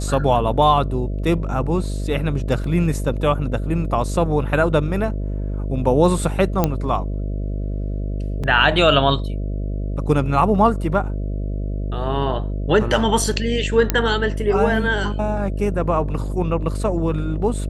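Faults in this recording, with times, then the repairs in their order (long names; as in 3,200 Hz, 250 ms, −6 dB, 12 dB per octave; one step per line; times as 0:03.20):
mains buzz 50 Hz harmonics 13 −24 dBFS
0:02.64: drop-out 3 ms
0:06.64: click −4 dBFS
0:08.43–0:08.44: drop-out 6.4 ms
0:13.90: click −1 dBFS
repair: click removal
hum removal 50 Hz, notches 13
repair the gap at 0:02.64, 3 ms
repair the gap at 0:08.43, 6.4 ms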